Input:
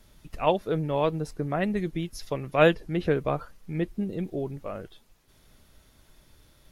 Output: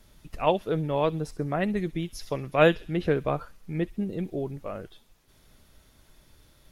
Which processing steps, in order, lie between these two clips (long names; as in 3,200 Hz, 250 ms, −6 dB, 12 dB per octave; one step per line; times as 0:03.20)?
delay with a high-pass on its return 65 ms, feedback 50%, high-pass 3,100 Hz, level −14.5 dB